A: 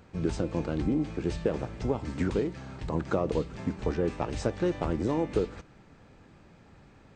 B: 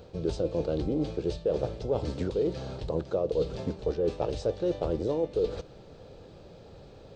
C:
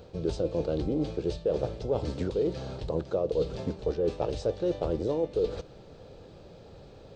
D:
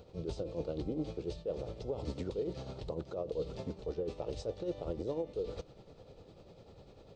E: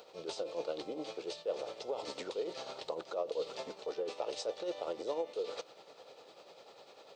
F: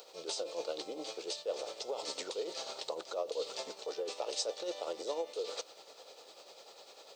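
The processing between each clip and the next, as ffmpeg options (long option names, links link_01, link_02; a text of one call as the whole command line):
ffmpeg -i in.wav -af "equalizer=frequency=250:width_type=o:width=1:gain=-7,equalizer=frequency=500:width_type=o:width=1:gain=11,equalizer=frequency=1000:width_type=o:width=1:gain=-5,equalizer=frequency=2000:width_type=o:width=1:gain=-11,equalizer=frequency=4000:width_type=o:width=1:gain=8,equalizer=frequency=8000:width_type=o:width=1:gain=-6,areverse,acompressor=threshold=-31dB:ratio=5,areverse,volume=5.5dB" out.wav
ffmpeg -i in.wav -af anull out.wav
ffmpeg -i in.wav -af "alimiter=limit=-22.5dB:level=0:latency=1:release=38,tremolo=f=10:d=0.54,bandreject=frequency=1600:width=7.5,volume=-4dB" out.wav
ffmpeg -i in.wav -af "highpass=730,volume=8.5dB" out.wav
ffmpeg -i in.wav -af "bass=frequency=250:gain=-10,treble=frequency=4000:gain=11" out.wav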